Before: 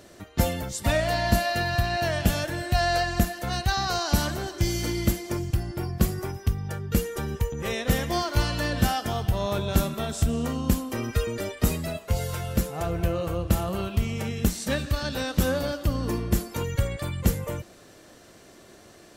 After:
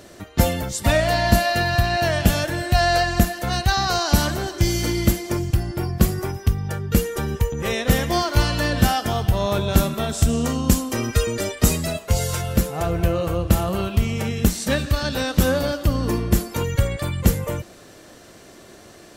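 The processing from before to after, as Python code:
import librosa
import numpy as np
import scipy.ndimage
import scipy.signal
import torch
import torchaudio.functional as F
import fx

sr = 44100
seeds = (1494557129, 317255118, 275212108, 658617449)

y = fx.dynamic_eq(x, sr, hz=6900.0, q=0.87, threshold_db=-50.0, ratio=4.0, max_db=7, at=(10.22, 12.42))
y = F.gain(torch.from_numpy(y), 5.5).numpy()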